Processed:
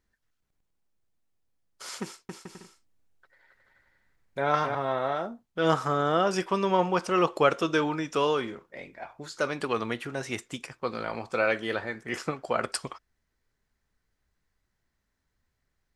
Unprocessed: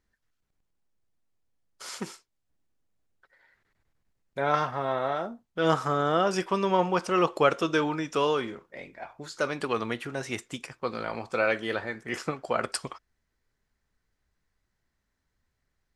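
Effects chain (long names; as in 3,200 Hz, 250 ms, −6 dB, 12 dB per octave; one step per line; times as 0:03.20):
0:02.02–0:04.75: bouncing-ball delay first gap 270 ms, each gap 0.6×, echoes 5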